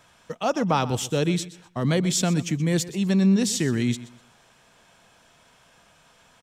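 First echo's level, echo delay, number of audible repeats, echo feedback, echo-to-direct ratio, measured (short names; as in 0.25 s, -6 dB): -16.5 dB, 0.125 s, 2, 27%, -16.0 dB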